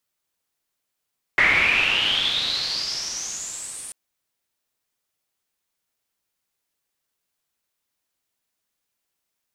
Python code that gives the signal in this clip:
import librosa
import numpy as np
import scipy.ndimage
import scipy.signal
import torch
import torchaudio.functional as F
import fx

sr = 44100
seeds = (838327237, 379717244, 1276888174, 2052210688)

y = fx.riser_noise(sr, seeds[0], length_s=2.54, colour='white', kind='lowpass', start_hz=2000.0, end_hz=9400.0, q=9.5, swell_db=-25.5, law='exponential')